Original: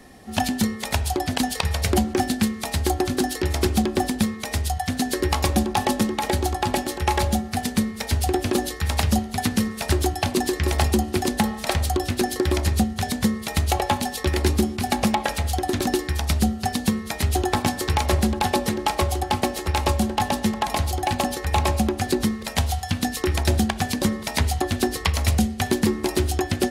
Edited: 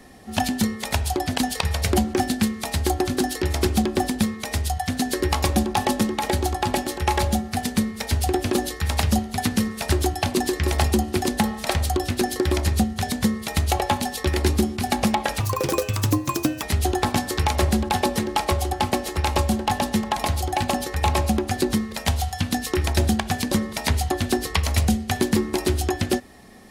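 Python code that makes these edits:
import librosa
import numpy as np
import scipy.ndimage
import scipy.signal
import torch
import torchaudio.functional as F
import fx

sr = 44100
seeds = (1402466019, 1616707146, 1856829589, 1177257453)

y = fx.edit(x, sr, fx.speed_span(start_s=15.4, length_s=1.73, speed=1.41), tone=tone)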